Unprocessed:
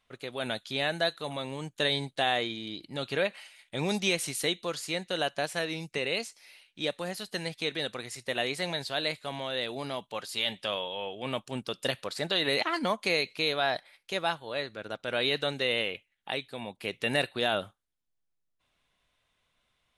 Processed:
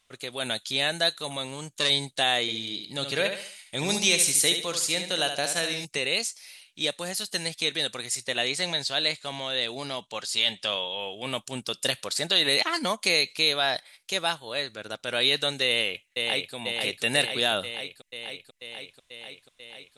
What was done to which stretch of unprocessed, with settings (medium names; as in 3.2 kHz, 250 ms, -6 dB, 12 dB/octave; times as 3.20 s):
1.47–1.90 s: transformer saturation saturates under 1.4 kHz
2.41–5.85 s: feedback delay 71 ms, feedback 37%, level -7.5 dB
8.26–11.00 s: low-pass 7.8 kHz
15.67–16.54 s: echo throw 490 ms, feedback 75%, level -3.5 dB
whole clip: peaking EQ 7.9 kHz +14 dB 2.1 oct